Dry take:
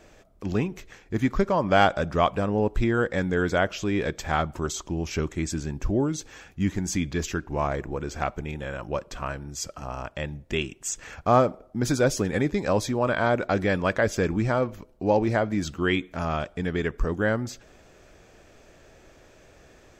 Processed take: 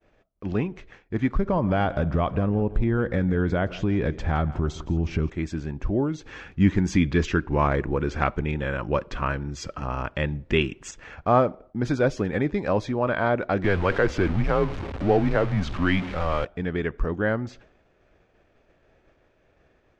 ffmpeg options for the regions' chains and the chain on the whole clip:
-filter_complex "[0:a]asettb=1/sr,asplit=3[s0][s1][s2];[s0]atrim=end=1.354[s3];[s1]atrim=start=1.35:end=5.3,asetpts=PTS-STARTPTS,afade=t=in:d=0.004:c=qsin,afade=t=out:st=3.946:d=0.004:c=qsin,lowshelf=f=260:g=11.5,acompressor=threshold=0.126:ratio=4:attack=3.2:release=140:knee=1:detection=peak,aecho=1:1:167|334|501:0.126|0.0441|0.0154,atrim=end_sample=174195[s4];[s2]atrim=start=5.296[s5];[s3][s4]acrossfade=d=0.004:c1=hsin:c2=qsin[s6];[s6][s5]acrossfade=d=0.004:c1=qsin:c2=hsin,asettb=1/sr,asplit=3[s7][s8][s9];[s7]atrim=end=6.264[s10];[s8]atrim=start=6.26:end=10.91,asetpts=PTS-STARTPTS,afade=t=in:d=0.004:c=qsin,afade=t=out:st=4.646:d=0.004:c=qsin,equalizer=f=690:t=o:w=0.52:g=-6.5,acontrast=73[s11];[s9]atrim=start=10.906[s12];[s10][s11]acrossfade=d=0.004:c1=hsin:c2=qsin[s13];[s13][s12]acrossfade=d=0.004:c1=qsin:c2=hsin,asettb=1/sr,asplit=3[s14][s15][s16];[s14]atrim=end=13.644[s17];[s15]atrim=start=13.64:end=16.45,asetpts=PTS-STARTPTS,afade=t=in:d=0.004:c=qsin,afade=t=out:st=2.806:d=0.004:c=qsin,aeval=exprs='val(0)+0.5*0.0447*sgn(val(0))':c=same,afreqshift=-92,highshelf=f=11000:g=-6.5[s18];[s16]atrim=start=16.446[s19];[s17][s18]acrossfade=d=0.004:c1=hsin:c2=qsin[s20];[s20][s19]acrossfade=d=0.004:c1=qsin:c2=hsin,agate=range=0.0224:threshold=0.00562:ratio=3:detection=peak,lowpass=3000"

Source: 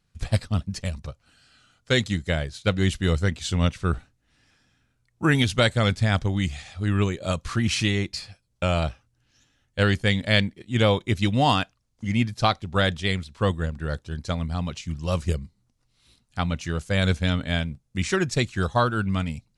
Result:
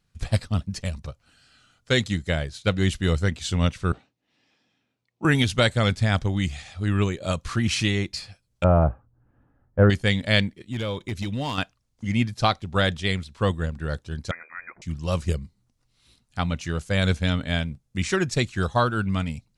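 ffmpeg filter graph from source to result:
-filter_complex "[0:a]asettb=1/sr,asplit=3[s0][s1][s2];[s0]atrim=end=3.924[s3];[s1]atrim=start=3.92:end=5.25,asetpts=PTS-STARTPTS,afade=t=in:d=0.004:c=qsin,afade=t=out:st=1.326:d=0.004:c=qsin,highpass=230,lowpass=4300,equalizer=f=1500:t=o:w=0.54:g=-10.5[s4];[s2]atrim=start=5.246[s5];[s3][s4]acrossfade=d=0.004:c1=hsin:c2=qsin[s6];[s6][s5]acrossfade=d=0.004:c1=qsin:c2=hsin,asettb=1/sr,asplit=3[s7][s8][s9];[s7]atrim=end=8.644[s10];[s8]atrim=start=8.64:end=9.9,asetpts=PTS-STARTPTS,afade=t=in:d=0.004:c=qsin,afade=t=out:st=1.256:d=0.004:c=qsin,lowpass=f=1200:w=0.5412,lowpass=f=1200:w=1.3066,acontrast=57[s11];[s9]atrim=start=9.896[s12];[s10][s11]acrossfade=d=0.004:c1=hsin:c2=qsin[s13];[s13][s12]acrossfade=d=0.004:c1=qsin:c2=hsin,asettb=1/sr,asplit=3[s14][s15][s16];[s14]atrim=end=10.564[s17];[s15]atrim=start=10.56:end=11.58,asetpts=PTS-STARTPTS,afade=t=in:d=0.004:c=qsin,afade=t=out:st=1.016:d=0.004:c=qsin,equalizer=f=740:t=o:w=0.25:g=-8.5,acompressor=threshold=0.0562:ratio=3:attack=3.2:release=140:knee=1:detection=peak,volume=11.2,asoftclip=hard,volume=0.0891[s18];[s16]atrim=start=11.576[s19];[s17][s18]acrossfade=d=0.004:c1=hsin:c2=qsin[s20];[s20][s19]acrossfade=d=0.004:c1=qsin:c2=hsin,asettb=1/sr,asplit=3[s21][s22][s23];[s21]atrim=end=14.314[s24];[s22]atrim=start=14.31:end=14.82,asetpts=PTS-STARTPTS,afade=t=in:d=0.004:c=qsin,afade=t=out:st=0.506:d=0.004:c=qsin,highpass=700,lowpass=f=2200:t=q:w=0.5098,lowpass=f=2200:t=q:w=0.6013,lowpass=f=2200:t=q:w=0.9,lowpass=f=2200:t=q:w=2.563,afreqshift=-2600[s25];[s23]atrim=start=14.816[s26];[s24][s25]acrossfade=d=0.004:c1=hsin:c2=qsin[s27];[s27][s26]acrossfade=d=0.004:c1=qsin:c2=hsin"

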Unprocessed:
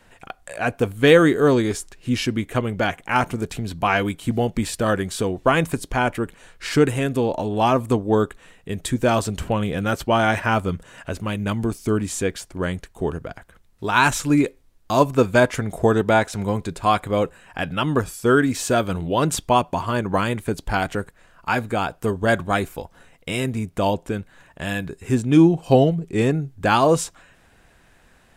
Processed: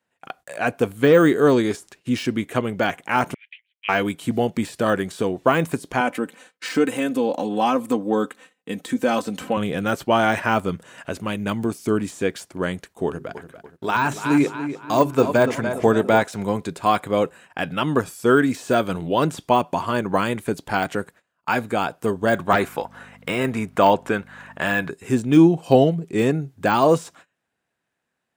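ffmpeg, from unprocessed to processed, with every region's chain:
-filter_complex "[0:a]asettb=1/sr,asplit=3[s0][s1][s2];[s0]atrim=end=3.344[s3];[s1]atrim=start=3.34:end=3.89,asetpts=PTS-STARTPTS,afade=t=in:d=0.004:c=qsin,afade=t=out:st=0.546:d=0.004:c=qsin,agate=range=0.0224:threshold=0.0251:ratio=3:release=100:detection=peak,asuperpass=centerf=2500:order=8:qfactor=1.9[s4];[s2]atrim=start=3.886[s5];[s3][s4]acrossfade=d=0.004:c1=hsin:c2=qsin[s6];[s6][s5]acrossfade=d=0.004:c1=qsin:c2=hsin,asettb=1/sr,asplit=3[s7][s8][s9];[s7]atrim=end=6.004[s10];[s8]atrim=start=6:end=9.57,asetpts=PTS-STARTPTS,afade=t=in:d=0.004:c=qsin,afade=t=out:st=3.566:d=0.004:c=qsin,highpass=150,aecho=1:1:3.9:0.7,atrim=end_sample=157437,acompressor=threshold=0.0794:ratio=1.5:attack=3.2:release=140:knee=1:detection=peak[s11];[s9]atrim=start=9.566[s12];[s10][s11]acrossfade=d=0.004:c1=hsin:c2=qsin[s13];[s13][s12]acrossfade=d=0.004:c1=qsin:c2=hsin,asettb=1/sr,asplit=3[s14][s15][s16];[s14]atrim=end=13.064[s17];[s15]atrim=start=13.06:end=16.22,asetpts=PTS-STARTPTS,afade=t=in:d=0.004:c=qsin,afade=t=out:st=3.156:d=0.004:c=qsin,bandreject=f=50:t=h:w=6,bandreject=f=100:t=h:w=6,bandreject=f=150:t=h:w=6,bandreject=f=200:t=h:w=6,bandreject=f=250:t=h:w=6,bandreject=f=300:t=h:w=6,bandreject=f=350:t=h:w=6,bandreject=f=400:t=h:w=6,asplit=2[s18][s19];[s19]adelay=288,lowpass=f=3200:p=1,volume=0.282,asplit=2[s20][s21];[s21]adelay=288,lowpass=f=3200:p=1,volume=0.47,asplit=2[s22][s23];[s23]adelay=288,lowpass=f=3200:p=1,volume=0.47,asplit=2[s24][s25];[s25]adelay=288,lowpass=f=3200:p=1,volume=0.47,asplit=2[s26][s27];[s27]adelay=288,lowpass=f=3200:p=1,volume=0.47[s28];[s18][s20][s22][s24][s26][s28]amix=inputs=6:normalize=0,atrim=end_sample=139356[s29];[s16]atrim=start=16.216[s30];[s17][s29]acrossfade=d=0.004:c1=hsin:c2=qsin[s31];[s31][s30]acrossfade=d=0.004:c1=qsin:c2=hsin,asettb=1/sr,asplit=3[s32][s33][s34];[s32]atrim=end=22.474[s35];[s33]atrim=start=22.47:end=24.91,asetpts=PTS-STARTPTS,afade=t=in:d=0.004:c=qsin,afade=t=out:st=2.436:d=0.004:c=qsin,equalizer=f=1300:t=o:w=2.3:g=11,aeval=exprs='val(0)+0.00891*(sin(2*PI*50*n/s)+sin(2*PI*2*50*n/s)/2+sin(2*PI*3*50*n/s)/3+sin(2*PI*4*50*n/s)/4+sin(2*PI*5*50*n/s)/5)':c=same[s36];[s34]atrim=start=24.906[s37];[s35][s36]acrossfade=d=0.004:c1=hsin:c2=qsin[s38];[s38][s37]acrossfade=d=0.004:c1=qsin:c2=hsin,agate=range=0.0708:threshold=0.00631:ratio=16:detection=peak,deesser=0.7,highpass=150,volume=1.12"

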